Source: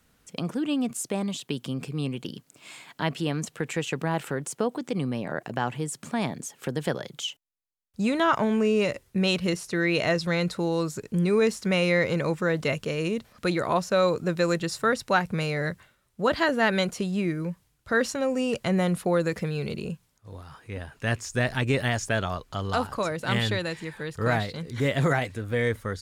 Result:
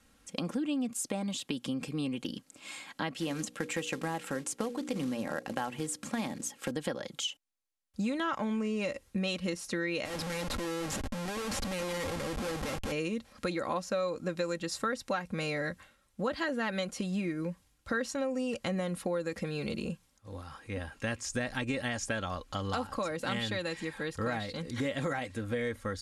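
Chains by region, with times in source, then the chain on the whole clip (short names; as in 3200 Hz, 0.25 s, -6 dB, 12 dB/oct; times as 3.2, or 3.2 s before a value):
3.14–6.71 notches 60/120/180/240/300/360/420/480/540 Hz + short-mantissa float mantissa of 2-bit
10.05–12.92 bell 99 Hz +15 dB 0.32 oct + compressor 3:1, threshold -32 dBFS + Schmitt trigger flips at -40.5 dBFS
whole clip: elliptic low-pass 12000 Hz, stop band 40 dB; comb 3.7 ms, depth 53%; compressor 4:1, threshold -31 dBFS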